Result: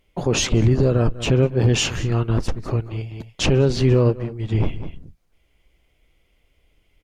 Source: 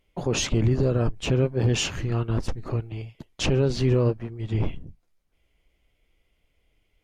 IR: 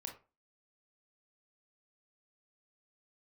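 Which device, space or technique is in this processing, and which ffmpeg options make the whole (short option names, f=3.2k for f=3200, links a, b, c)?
ducked delay: -filter_complex "[0:a]asplit=3[a][b][c];[b]adelay=198,volume=-5.5dB[d];[c]apad=whole_len=318927[e];[d][e]sidechaincompress=threshold=-40dB:ratio=8:attack=11:release=139[f];[a][f]amix=inputs=2:normalize=0,volume=5dB"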